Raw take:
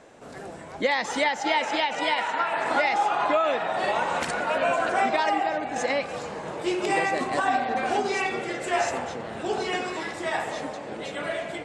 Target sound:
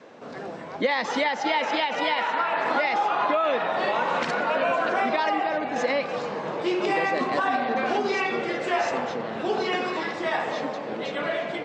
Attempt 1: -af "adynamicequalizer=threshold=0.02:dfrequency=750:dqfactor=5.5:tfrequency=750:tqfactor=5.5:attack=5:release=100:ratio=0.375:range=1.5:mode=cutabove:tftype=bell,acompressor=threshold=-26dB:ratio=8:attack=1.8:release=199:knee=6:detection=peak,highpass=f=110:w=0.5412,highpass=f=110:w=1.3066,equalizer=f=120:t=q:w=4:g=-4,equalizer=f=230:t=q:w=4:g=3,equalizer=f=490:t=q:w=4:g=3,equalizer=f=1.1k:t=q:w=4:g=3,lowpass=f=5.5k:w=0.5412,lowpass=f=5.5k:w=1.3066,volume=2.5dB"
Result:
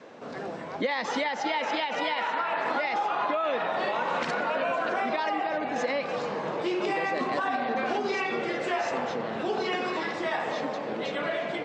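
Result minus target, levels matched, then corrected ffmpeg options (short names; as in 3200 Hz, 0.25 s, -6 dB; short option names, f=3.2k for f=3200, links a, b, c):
compressor: peak gain reduction +5 dB
-af "adynamicequalizer=threshold=0.02:dfrequency=750:dqfactor=5.5:tfrequency=750:tqfactor=5.5:attack=5:release=100:ratio=0.375:range=1.5:mode=cutabove:tftype=bell,acompressor=threshold=-20dB:ratio=8:attack=1.8:release=199:knee=6:detection=peak,highpass=f=110:w=0.5412,highpass=f=110:w=1.3066,equalizer=f=120:t=q:w=4:g=-4,equalizer=f=230:t=q:w=4:g=3,equalizer=f=490:t=q:w=4:g=3,equalizer=f=1.1k:t=q:w=4:g=3,lowpass=f=5.5k:w=0.5412,lowpass=f=5.5k:w=1.3066,volume=2.5dB"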